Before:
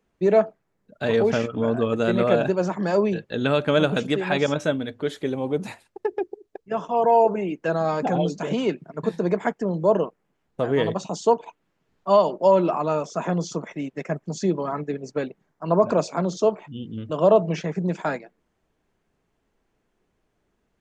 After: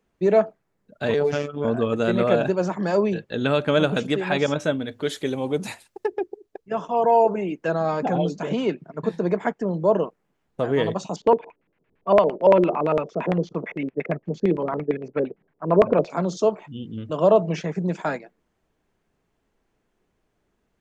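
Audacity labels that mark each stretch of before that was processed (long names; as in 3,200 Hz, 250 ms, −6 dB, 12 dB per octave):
1.140000	1.650000	phases set to zero 145 Hz
4.910000	6.080000	high-shelf EQ 2,900 Hz +9.5 dB
7.720000	10.020000	high-shelf EQ 7,000 Hz −9 dB
11.160000	16.100000	auto-filter low-pass square 8.8 Hz 460–2,300 Hz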